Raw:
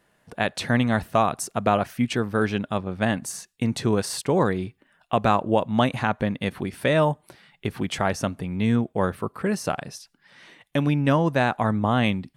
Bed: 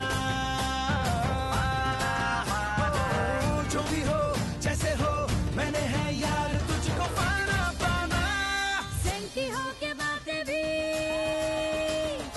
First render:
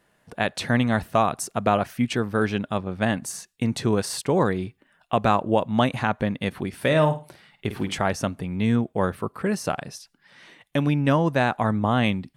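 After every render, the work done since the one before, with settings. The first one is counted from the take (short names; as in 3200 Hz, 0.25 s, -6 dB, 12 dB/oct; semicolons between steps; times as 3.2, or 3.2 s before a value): 6.77–7.97 flutter echo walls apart 8.9 m, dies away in 0.3 s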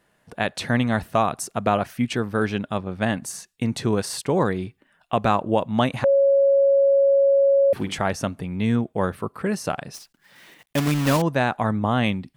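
6.04–7.73 bleep 553 Hz -13.5 dBFS; 9.94–11.24 block floating point 3-bit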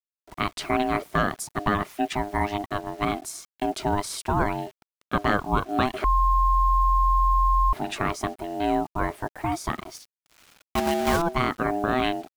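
bit-crush 8-bit; ring modulator 510 Hz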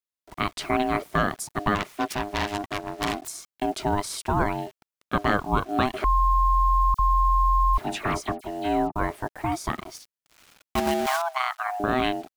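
1.75–3.28 self-modulated delay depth 0.57 ms; 6.94–8.96 dispersion lows, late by 52 ms, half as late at 2800 Hz; 11.06–11.8 brick-wall FIR high-pass 640 Hz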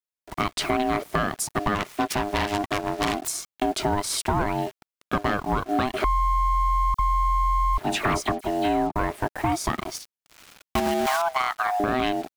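compressor 6:1, threshold -26 dBFS, peak gain reduction 9.5 dB; sample leveller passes 2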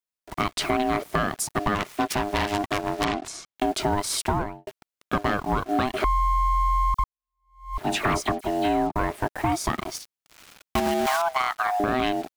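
3.04–3.56 air absorption 91 m; 4.27–4.67 studio fade out; 7.04–7.8 fade in exponential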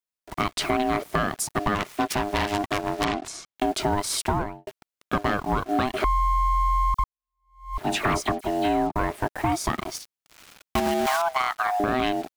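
nothing audible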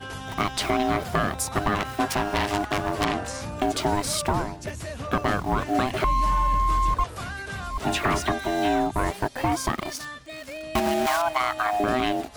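add bed -7 dB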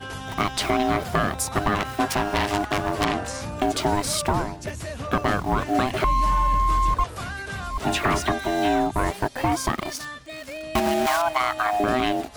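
gain +1.5 dB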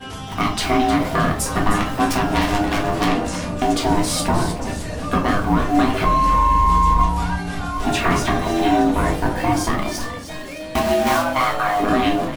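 frequency-shifting echo 0.309 s, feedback 46%, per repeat -110 Hz, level -10.5 dB; shoebox room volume 230 m³, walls furnished, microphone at 1.8 m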